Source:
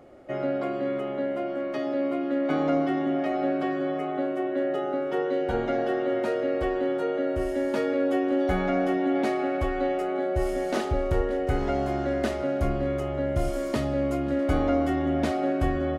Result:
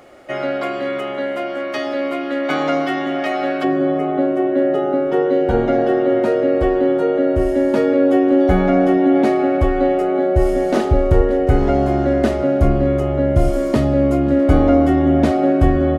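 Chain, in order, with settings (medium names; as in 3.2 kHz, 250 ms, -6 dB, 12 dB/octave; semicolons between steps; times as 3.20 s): tilt shelf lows -7 dB, about 800 Hz, from 3.63 s lows +4 dB; trim +8.5 dB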